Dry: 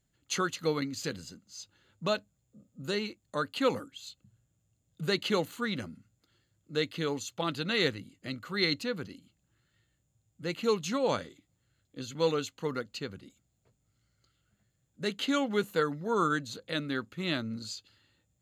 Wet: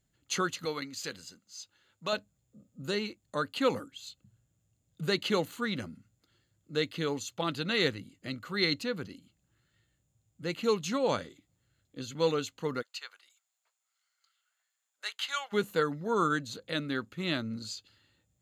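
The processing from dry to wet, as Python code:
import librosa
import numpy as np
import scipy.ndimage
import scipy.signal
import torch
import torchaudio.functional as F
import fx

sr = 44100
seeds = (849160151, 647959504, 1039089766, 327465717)

y = fx.low_shelf(x, sr, hz=430.0, db=-11.5, at=(0.65, 2.13))
y = fx.highpass(y, sr, hz=880.0, slope=24, at=(12.81, 15.52), fade=0.02)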